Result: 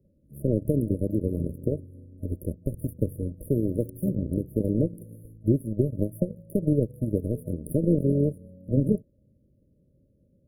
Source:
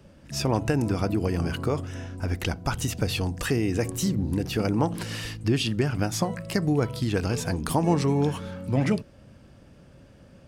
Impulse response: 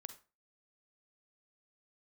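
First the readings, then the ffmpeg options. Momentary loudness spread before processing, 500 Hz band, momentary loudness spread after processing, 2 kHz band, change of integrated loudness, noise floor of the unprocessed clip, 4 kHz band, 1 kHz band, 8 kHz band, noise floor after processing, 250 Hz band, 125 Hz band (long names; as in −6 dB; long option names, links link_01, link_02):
6 LU, 0.0 dB, 9 LU, below −40 dB, −1.0 dB, −52 dBFS, below −40 dB, below −40 dB, below −15 dB, −65 dBFS, 0.0 dB, −1.0 dB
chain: -af "equalizer=frequency=630:width_type=o:width=0.67:gain=-5,equalizer=frequency=1600:width_type=o:width=0.67:gain=3,equalizer=frequency=4000:width_type=o:width=0.67:gain=-9,equalizer=frequency=10000:width_type=o:width=0.67:gain=-4,aeval=exprs='0.335*(cos(1*acos(clip(val(0)/0.335,-1,1)))-cos(1*PI/2))+0.0299*(cos(5*acos(clip(val(0)/0.335,-1,1)))-cos(5*PI/2))+0.0596*(cos(7*acos(clip(val(0)/0.335,-1,1)))-cos(7*PI/2))':channel_layout=same,afftfilt=real='re*(1-between(b*sr/4096,630,9400))':imag='im*(1-between(b*sr/4096,630,9400))':win_size=4096:overlap=0.75,volume=2dB"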